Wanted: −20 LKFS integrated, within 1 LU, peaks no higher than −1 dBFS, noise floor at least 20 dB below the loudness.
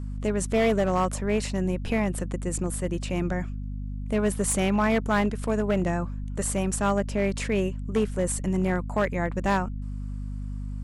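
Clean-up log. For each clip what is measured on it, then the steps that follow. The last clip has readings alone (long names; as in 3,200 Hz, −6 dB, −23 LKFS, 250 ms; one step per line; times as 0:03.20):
share of clipped samples 1.1%; peaks flattened at −17.0 dBFS; mains hum 50 Hz; hum harmonics up to 250 Hz; level of the hum −30 dBFS; integrated loudness −27.0 LKFS; sample peak −17.0 dBFS; target loudness −20.0 LKFS
→ clipped peaks rebuilt −17 dBFS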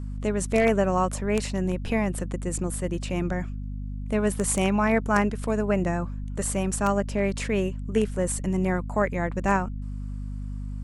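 share of clipped samples 0.0%; mains hum 50 Hz; hum harmonics up to 250 Hz; level of the hum −30 dBFS
→ hum removal 50 Hz, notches 5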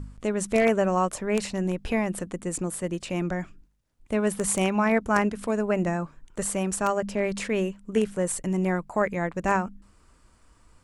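mains hum none found; integrated loudness −26.5 LKFS; sample peak −8.0 dBFS; target loudness −20.0 LKFS
→ level +6.5 dB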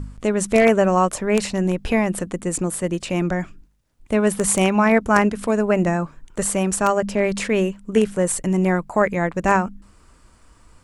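integrated loudness −20.0 LKFS; sample peak −1.5 dBFS; background noise floor −53 dBFS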